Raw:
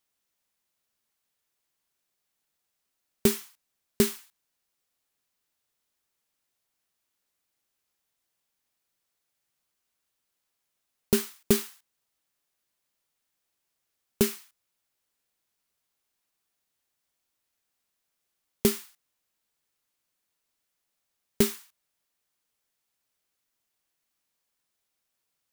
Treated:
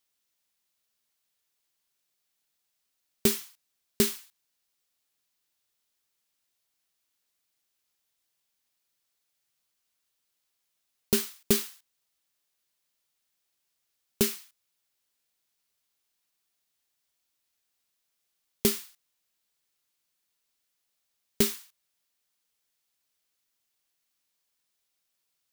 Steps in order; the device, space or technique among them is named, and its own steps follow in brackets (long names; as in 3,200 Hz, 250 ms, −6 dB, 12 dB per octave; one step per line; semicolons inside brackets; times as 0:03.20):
presence and air boost (parametric band 4,100 Hz +5 dB 1.9 octaves; high-shelf EQ 9,600 Hz +5.5 dB)
level −3 dB